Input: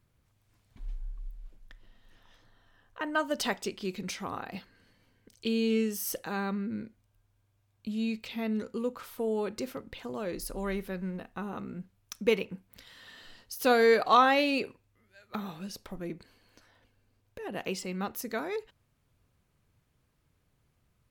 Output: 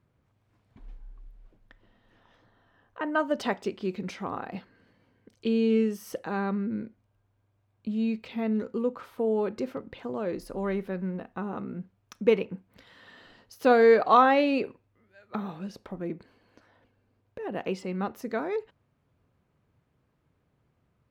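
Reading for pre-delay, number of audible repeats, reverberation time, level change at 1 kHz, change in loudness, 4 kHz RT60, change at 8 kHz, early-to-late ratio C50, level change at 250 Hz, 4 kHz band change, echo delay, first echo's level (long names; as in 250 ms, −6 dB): no reverb audible, no echo audible, no reverb audible, +3.0 dB, +3.0 dB, no reverb audible, below −10 dB, no reverb audible, +4.0 dB, −5.0 dB, no echo audible, no echo audible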